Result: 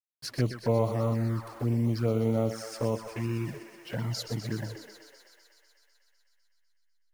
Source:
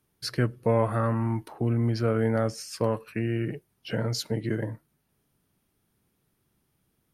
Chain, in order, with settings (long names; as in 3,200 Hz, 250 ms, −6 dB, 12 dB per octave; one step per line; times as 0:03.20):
hold until the input has moved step −44 dBFS
feedback echo with a high-pass in the loop 125 ms, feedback 80%, high-pass 370 Hz, level −8.5 dB
flanger swept by the level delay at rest 9.2 ms, full sweep at −20.5 dBFS
level −1.5 dB